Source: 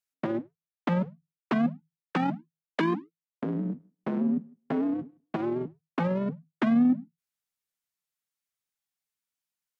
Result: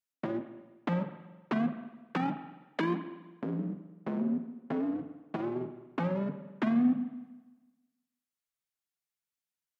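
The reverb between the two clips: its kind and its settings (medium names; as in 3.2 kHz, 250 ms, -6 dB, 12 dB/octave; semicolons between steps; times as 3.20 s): spring tank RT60 1.2 s, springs 41/52 ms, chirp 40 ms, DRR 8.5 dB; trim -4.5 dB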